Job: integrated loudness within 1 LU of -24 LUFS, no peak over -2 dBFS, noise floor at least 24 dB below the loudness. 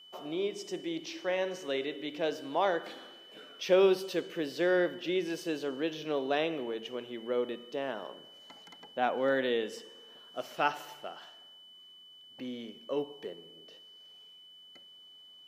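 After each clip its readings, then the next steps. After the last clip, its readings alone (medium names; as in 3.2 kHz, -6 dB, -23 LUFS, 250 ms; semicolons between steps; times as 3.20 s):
steady tone 3 kHz; tone level -52 dBFS; loudness -33.0 LUFS; peak level -14.0 dBFS; loudness target -24.0 LUFS
-> band-stop 3 kHz, Q 30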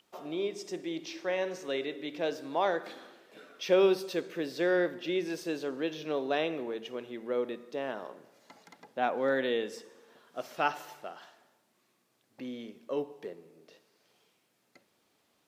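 steady tone not found; loudness -33.0 LUFS; peak level -13.5 dBFS; loudness target -24.0 LUFS
-> trim +9 dB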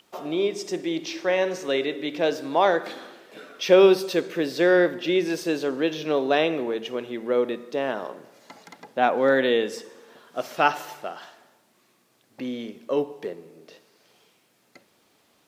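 loudness -24.0 LUFS; peak level -4.5 dBFS; noise floor -64 dBFS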